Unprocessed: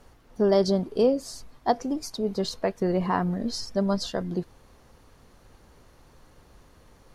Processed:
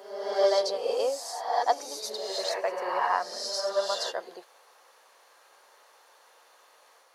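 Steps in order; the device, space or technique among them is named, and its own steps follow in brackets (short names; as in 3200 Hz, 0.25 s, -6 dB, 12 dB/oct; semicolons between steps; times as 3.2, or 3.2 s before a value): ghost voice (reverse; reverb RT60 1.1 s, pre-delay 76 ms, DRR -0.5 dB; reverse; HPF 590 Hz 24 dB/oct)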